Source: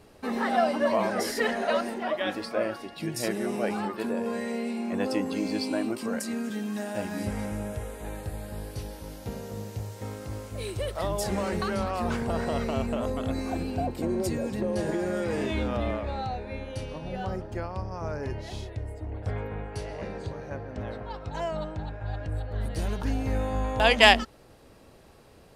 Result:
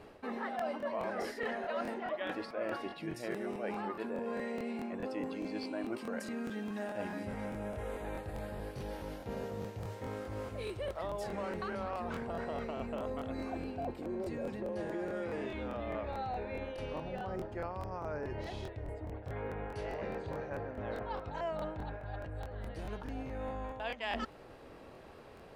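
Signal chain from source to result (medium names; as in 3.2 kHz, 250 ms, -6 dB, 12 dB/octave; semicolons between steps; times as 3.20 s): reverse; compression 12:1, threshold -36 dBFS, peak gain reduction 25.5 dB; reverse; tone controls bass -6 dB, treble -13 dB; crackling interface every 0.21 s, samples 1024, repeat, from 0.57 s; trim +3 dB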